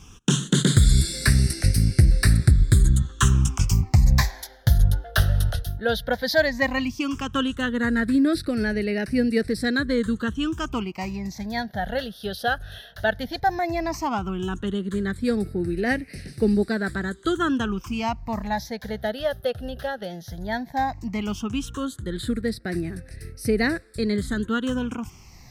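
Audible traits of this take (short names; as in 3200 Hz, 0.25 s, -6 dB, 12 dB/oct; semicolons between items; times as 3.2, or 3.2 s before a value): phasing stages 8, 0.14 Hz, lowest notch 300–1000 Hz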